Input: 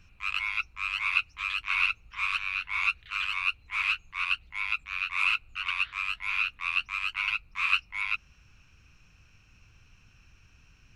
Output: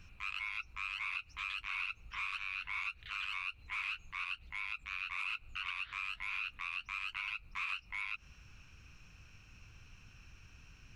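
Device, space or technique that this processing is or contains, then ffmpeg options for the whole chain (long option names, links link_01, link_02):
de-esser from a sidechain: -filter_complex "[0:a]asplit=2[link_01][link_02];[link_02]highpass=frequency=5700:poles=1,apad=whole_len=483324[link_03];[link_01][link_03]sidechaincompress=threshold=-44dB:ratio=4:attack=0.58:release=89,volume=1dB"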